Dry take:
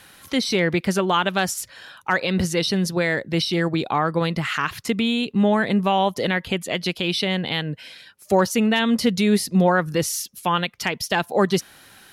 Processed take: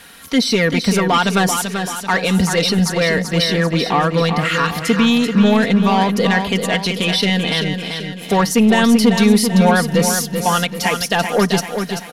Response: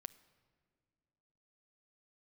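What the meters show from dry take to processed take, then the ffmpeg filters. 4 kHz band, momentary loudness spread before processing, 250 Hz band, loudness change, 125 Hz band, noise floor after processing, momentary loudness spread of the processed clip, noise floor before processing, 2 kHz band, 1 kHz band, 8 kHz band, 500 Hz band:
+6.5 dB, 7 LU, +7.0 dB, +6.0 dB, +6.5 dB, −31 dBFS, 7 LU, −50 dBFS, +5.5 dB, +5.5 dB, +7.5 dB, +5.0 dB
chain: -filter_complex "[0:a]aeval=exprs='0.447*(cos(1*acos(clip(val(0)/0.447,-1,1)))-cos(1*PI/2))+0.00708*(cos(4*acos(clip(val(0)/0.447,-1,1)))-cos(4*PI/2))+0.0562*(cos(5*acos(clip(val(0)/0.447,-1,1)))-cos(5*PI/2))':channel_layout=same,aecho=1:1:4.3:0.57,aecho=1:1:387|774|1161|1548|1935|2322:0.447|0.214|0.103|0.0494|0.0237|0.0114,asplit=2[link_01][link_02];[1:a]atrim=start_sample=2205[link_03];[link_02][link_03]afir=irnorm=-1:irlink=0,volume=-1dB[link_04];[link_01][link_04]amix=inputs=2:normalize=0,volume=-2dB"

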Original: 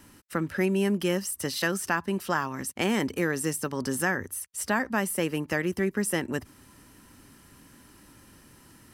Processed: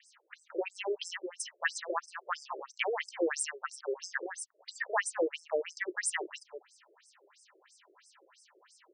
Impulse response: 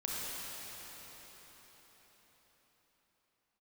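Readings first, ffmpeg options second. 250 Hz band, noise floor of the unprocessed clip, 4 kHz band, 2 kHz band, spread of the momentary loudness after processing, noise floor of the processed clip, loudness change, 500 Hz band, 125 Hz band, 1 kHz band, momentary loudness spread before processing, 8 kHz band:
−16.0 dB, −55 dBFS, −5.5 dB, −6.0 dB, 11 LU, −69 dBFS, −7.5 dB, −5.5 dB, below −40 dB, −6.0 dB, 6 LU, −5.5 dB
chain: -filter_complex "[0:a]asplit=2[link_01][link_02];[link_02]adelay=198.3,volume=-11dB,highshelf=frequency=4000:gain=-4.46[link_03];[link_01][link_03]amix=inputs=2:normalize=0,afftfilt=real='re*between(b*sr/1024,440*pow(7000/440,0.5+0.5*sin(2*PI*3*pts/sr))/1.41,440*pow(7000/440,0.5+0.5*sin(2*PI*3*pts/sr))*1.41)':imag='im*between(b*sr/1024,440*pow(7000/440,0.5+0.5*sin(2*PI*3*pts/sr))/1.41,440*pow(7000/440,0.5+0.5*sin(2*PI*3*pts/sr))*1.41)':win_size=1024:overlap=0.75,volume=2dB"

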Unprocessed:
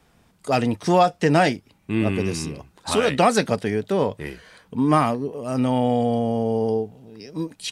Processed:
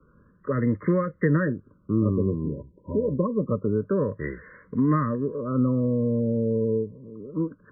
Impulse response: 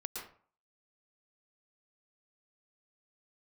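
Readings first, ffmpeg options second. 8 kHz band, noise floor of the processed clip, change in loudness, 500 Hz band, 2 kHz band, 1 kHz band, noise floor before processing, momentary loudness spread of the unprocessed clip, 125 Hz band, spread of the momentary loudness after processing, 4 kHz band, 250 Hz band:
below −40 dB, −60 dBFS, −4.0 dB, −4.5 dB, −8.5 dB, −13.0 dB, −60 dBFS, 15 LU, +1.0 dB, 12 LU, below −40 dB, −1.5 dB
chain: -filter_complex "[0:a]acrossover=split=180|3000[link_01][link_02][link_03];[link_02]acompressor=threshold=-25dB:ratio=3[link_04];[link_01][link_04][link_03]amix=inputs=3:normalize=0,asuperstop=centerf=770:order=12:qfactor=1.9,afftfilt=real='re*lt(b*sr/1024,990*pow(2200/990,0.5+0.5*sin(2*PI*0.27*pts/sr)))':imag='im*lt(b*sr/1024,990*pow(2200/990,0.5+0.5*sin(2*PI*0.27*pts/sr)))':win_size=1024:overlap=0.75,volume=2dB"

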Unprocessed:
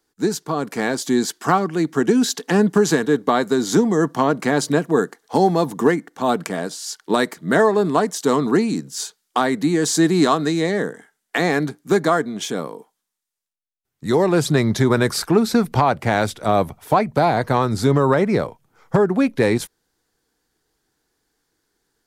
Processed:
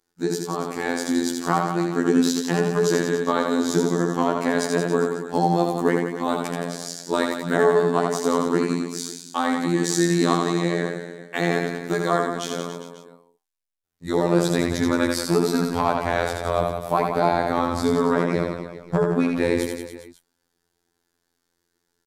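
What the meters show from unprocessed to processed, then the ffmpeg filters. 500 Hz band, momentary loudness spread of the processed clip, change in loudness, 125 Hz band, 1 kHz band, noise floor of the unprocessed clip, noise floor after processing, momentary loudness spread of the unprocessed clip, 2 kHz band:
−3.0 dB, 9 LU, −3.5 dB, −4.5 dB, −3.5 dB, −78 dBFS, −76 dBFS, 8 LU, −3.5 dB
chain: -af "aecho=1:1:80|172|277.8|399.5|539.4:0.631|0.398|0.251|0.158|0.1,afftfilt=real='hypot(re,im)*cos(PI*b)':imag='0':win_size=2048:overlap=0.75,volume=-2dB"

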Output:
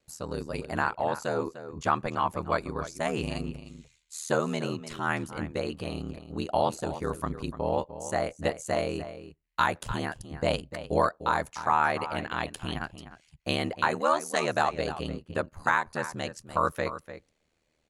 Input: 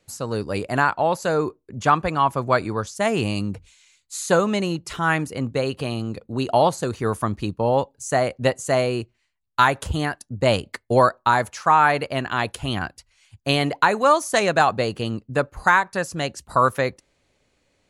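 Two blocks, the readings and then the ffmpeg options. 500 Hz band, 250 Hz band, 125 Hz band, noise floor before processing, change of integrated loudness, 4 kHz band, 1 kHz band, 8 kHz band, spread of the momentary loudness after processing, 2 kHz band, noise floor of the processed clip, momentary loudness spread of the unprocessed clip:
−8.5 dB, −8.0 dB, −9.5 dB, −70 dBFS, −8.5 dB, −8.5 dB, −8.5 dB, −8.5 dB, 10 LU, −8.5 dB, −74 dBFS, 10 LU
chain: -filter_complex "[0:a]asplit=2[link_01][link_02];[link_02]adelay=297.4,volume=-12dB,highshelf=frequency=4000:gain=-6.69[link_03];[link_01][link_03]amix=inputs=2:normalize=0,aeval=exprs='val(0)*sin(2*PI*39*n/s)':channel_layout=same,volume=-5.5dB"

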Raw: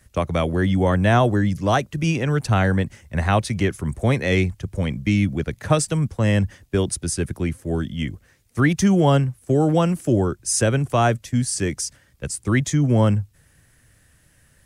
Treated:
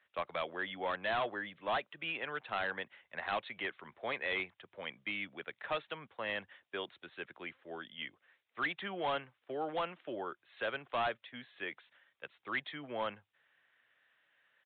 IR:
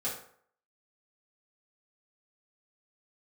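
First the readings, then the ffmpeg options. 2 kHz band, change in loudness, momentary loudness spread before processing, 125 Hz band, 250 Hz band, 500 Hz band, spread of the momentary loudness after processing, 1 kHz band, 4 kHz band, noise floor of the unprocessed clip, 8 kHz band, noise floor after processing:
−10.0 dB, −18.0 dB, 9 LU, −38.0 dB, −28.0 dB, −17.5 dB, 11 LU, −13.0 dB, −11.0 dB, −58 dBFS, below −40 dB, −84 dBFS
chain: -af "highpass=800,aresample=8000,volume=21dB,asoftclip=hard,volume=-21dB,aresample=44100,volume=-8dB"

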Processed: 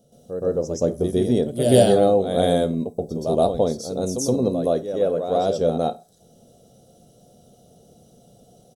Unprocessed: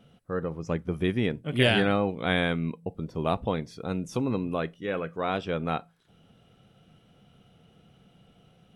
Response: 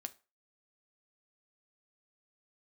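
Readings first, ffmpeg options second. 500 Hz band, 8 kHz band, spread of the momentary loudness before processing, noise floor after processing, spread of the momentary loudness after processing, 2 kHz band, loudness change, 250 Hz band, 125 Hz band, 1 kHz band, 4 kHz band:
+11.5 dB, +18.5 dB, 10 LU, −55 dBFS, 11 LU, −10.5 dB, +7.5 dB, +6.0 dB, +4.0 dB, +6.0 dB, 0.0 dB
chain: -filter_complex "[0:a]firequalizer=gain_entry='entry(150,0);entry(610,10);entry(990,-9);entry(2400,-18);entry(3800,3);entry(6000,15)':delay=0.05:min_phase=1,asplit=2[link_01][link_02];[1:a]atrim=start_sample=2205,adelay=122[link_03];[link_02][link_03]afir=irnorm=-1:irlink=0,volume=11dB[link_04];[link_01][link_04]amix=inputs=2:normalize=0,volume=-4.5dB"

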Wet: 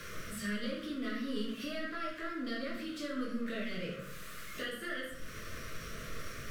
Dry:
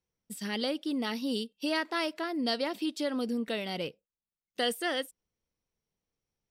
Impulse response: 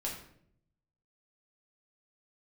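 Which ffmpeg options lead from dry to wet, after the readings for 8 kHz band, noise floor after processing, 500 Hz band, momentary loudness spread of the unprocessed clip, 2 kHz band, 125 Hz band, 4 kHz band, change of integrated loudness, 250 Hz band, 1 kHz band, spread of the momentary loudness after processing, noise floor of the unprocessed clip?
−3.0 dB, −46 dBFS, −7.5 dB, 8 LU, −3.0 dB, +2.0 dB, −9.0 dB, −7.0 dB, −5.0 dB, −7.5 dB, 7 LU, below −85 dBFS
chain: -filter_complex "[0:a]aeval=exprs='val(0)+0.5*0.0112*sgn(val(0))':channel_layout=same,equalizer=frequency=1400:width_type=o:width=1.7:gain=14.5,acrossover=split=170[link_01][link_02];[link_02]acompressor=threshold=-43dB:ratio=3[link_03];[link_01][link_03]amix=inputs=2:normalize=0,asuperstop=centerf=850:order=8:qfactor=2[link_04];[1:a]atrim=start_sample=2205,asetrate=32634,aresample=44100[link_05];[link_04][link_05]afir=irnorm=-1:irlink=0,volume=-3.5dB"

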